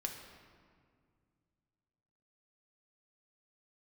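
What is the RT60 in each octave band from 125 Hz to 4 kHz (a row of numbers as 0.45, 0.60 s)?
3.2, 2.8, 2.2, 1.9, 1.6, 1.2 s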